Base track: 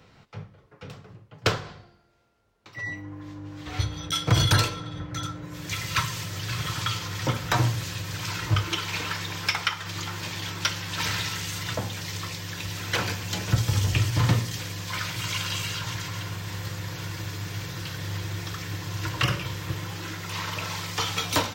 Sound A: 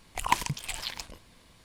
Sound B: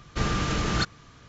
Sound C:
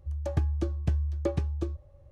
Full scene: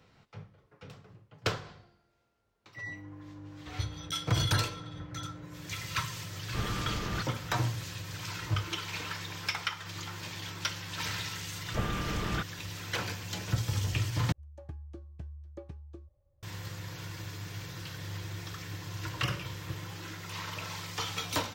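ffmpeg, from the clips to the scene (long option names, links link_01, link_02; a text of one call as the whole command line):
ffmpeg -i bed.wav -i cue0.wav -i cue1.wav -i cue2.wav -filter_complex "[2:a]asplit=2[link_01][link_02];[0:a]volume=-7.5dB[link_03];[link_01]lowpass=3600[link_04];[link_02]aresample=8000,aresample=44100[link_05];[3:a]highshelf=frequency=4300:gain=-4.5[link_06];[link_03]asplit=2[link_07][link_08];[link_07]atrim=end=14.324[link_09];[link_06]atrim=end=2.11,asetpts=PTS-STARTPTS,volume=-16.5dB[link_10];[link_08]atrim=start=16.426[link_11];[link_04]atrim=end=1.28,asetpts=PTS-STARTPTS,volume=-9dB,afade=type=in:duration=0.004:curve=hsin,afade=type=out:start_time=1.276:duration=0.004:curve=hsin,adelay=6380[link_12];[link_05]atrim=end=1.28,asetpts=PTS-STARTPTS,volume=-7dB,afade=type=in:duration=0.004:curve=hsin,afade=type=out:start_time=1.276:duration=0.004:curve=hsin,adelay=11580[link_13];[link_09][link_10]acrossfade=duration=0.004:curve1=hsin:curve2=hsin[link_14];[link_14][link_11]acrossfade=duration=0.004:curve1=hsin:curve2=hsin[link_15];[link_15][link_12][link_13]amix=inputs=3:normalize=0" out.wav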